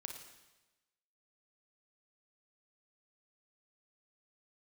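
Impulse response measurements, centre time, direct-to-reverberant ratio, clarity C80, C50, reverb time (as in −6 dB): 35 ms, 3.0 dB, 7.0 dB, 4.0 dB, 1.1 s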